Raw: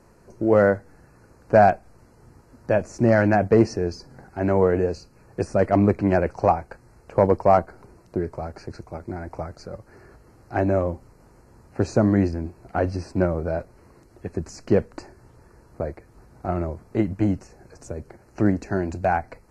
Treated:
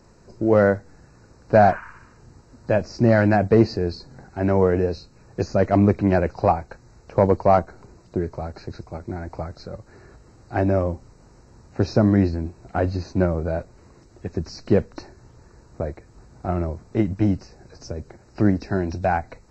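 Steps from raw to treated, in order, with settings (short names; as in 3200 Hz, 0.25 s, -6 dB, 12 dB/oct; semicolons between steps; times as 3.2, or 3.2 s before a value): nonlinear frequency compression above 3400 Hz 1.5:1; tone controls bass +3 dB, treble +7 dB; spectral repair 1.66–2.25, 900–3000 Hz both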